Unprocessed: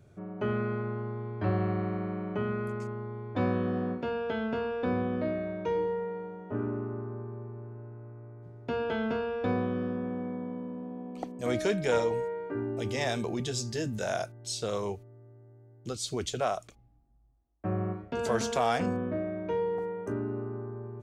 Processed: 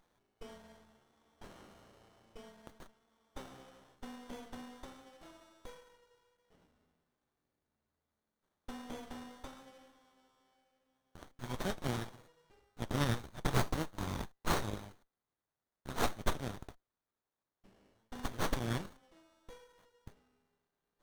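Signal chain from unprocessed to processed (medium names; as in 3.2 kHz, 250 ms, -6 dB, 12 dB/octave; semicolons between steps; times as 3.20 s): Chebyshev high-pass 2.6 kHz, order 5; sliding maximum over 17 samples; trim +9.5 dB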